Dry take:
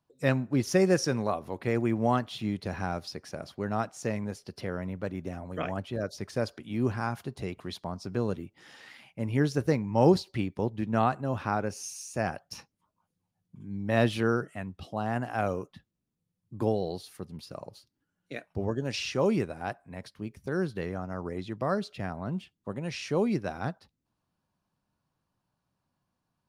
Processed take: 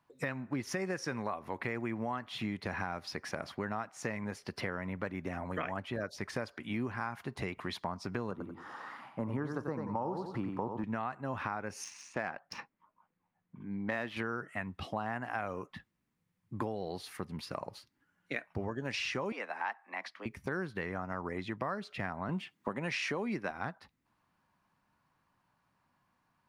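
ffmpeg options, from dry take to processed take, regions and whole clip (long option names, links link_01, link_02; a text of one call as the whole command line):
ffmpeg -i in.wav -filter_complex "[0:a]asettb=1/sr,asplit=3[link_01][link_02][link_03];[link_01]atrim=end=8.314[link_04];[link_02]atrim=start=8.31:end=10.84,asetpts=PTS-STARTPTS,afade=type=in:duration=0.004:curve=qsin,afade=type=out:start_time=2.526:duration=0.004:curve=qsin,highpass=100,highshelf=frequency=1600:width_type=q:width=3:gain=-9.5,aecho=1:1:90|180|270:0.447|0.116|0.0302,atrim=end_sample=111573[link_05];[link_03]atrim=start=10.836[link_06];[link_04][link_05]acrossfade=duration=0.004:curve1=hsin:curve2=qsin[link_07];[link_07][link_06]acrossfade=duration=0.004:curve1=qsin:curve2=hsin,asettb=1/sr,asplit=3[link_08][link_09][link_10];[link_08]atrim=end=11.844[link_11];[link_09]atrim=start=11.84:end=14.17,asetpts=PTS-STARTPTS,afade=type=in:duration=0.004:curve=qsin,afade=type=out:start_time=2.326:duration=0.004:curve=qsin,equalizer=frequency=72:width=0.78:gain=-11.5,adynamicsmooth=sensitivity=7.5:basefreq=2700[link_12];[link_10]atrim=start=14.166[link_13];[link_11][link_12]acrossfade=duration=0.004:curve1=hsin:curve2=qsin[link_14];[link_14][link_13]acrossfade=duration=0.004:curve1=qsin:curve2=hsin,asettb=1/sr,asplit=3[link_15][link_16][link_17];[link_15]atrim=end=19.324[link_18];[link_16]atrim=start=19.32:end=20.26,asetpts=PTS-STARTPTS,afade=type=in:duration=0.004:curve=qsin,afade=type=out:start_time=0.936:duration=0.004:curve=qsin,acrossover=split=480 6300:gain=0.141 1 0.178[link_19][link_20][link_21];[link_19][link_20][link_21]amix=inputs=3:normalize=0,afreqshift=95[link_22];[link_17]atrim=start=20.256[link_23];[link_18][link_22]acrossfade=duration=0.004:curve1=hsin:curve2=qsin[link_24];[link_24][link_23]acrossfade=duration=0.004:curve1=qsin:curve2=hsin,asettb=1/sr,asplit=3[link_25][link_26][link_27];[link_25]atrim=end=22.294[link_28];[link_26]atrim=start=22.29:end=23.51,asetpts=PTS-STARTPTS,afade=type=in:duration=0.004:curve=qsin,afade=type=out:start_time=1.216:duration=0.004:curve=qsin,highpass=150,acontrast=51[link_29];[link_27]atrim=start=23.506[link_30];[link_28][link_29]acrossfade=duration=0.004:curve1=hsin:curve2=qsin[link_31];[link_31][link_30]acrossfade=duration=0.004:curve1=qsin:curve2=hsin,alimiter=limit=-19dB:level=0:latency=1:release=387,equalizer=frequency=250:width_type=o:width=1:gain=3,equalizer=frequency=1000:width_type=o:width=1:gain=8,equalizer=frequency=2000:width_type=o:width=1:gain=11,acompressor=threshold=-34dB:ratio=4" out.wav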